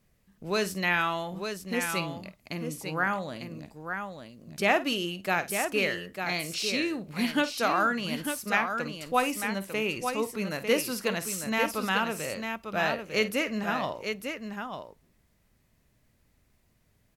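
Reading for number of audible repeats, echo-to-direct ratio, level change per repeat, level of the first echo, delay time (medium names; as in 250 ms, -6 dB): 2, -6.0 dB, no regular repeats, -14.0 dB, 51 ms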